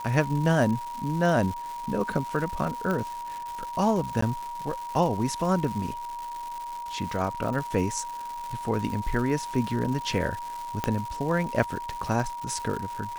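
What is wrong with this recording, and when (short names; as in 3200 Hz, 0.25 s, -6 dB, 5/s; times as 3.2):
crackle 350/s -33 dBFS
tone 950 Hz -33 dBFS
2.91 pop -17 dBFS
4.21–4.22 gap 14 ms
10.84 pop -11 dBFS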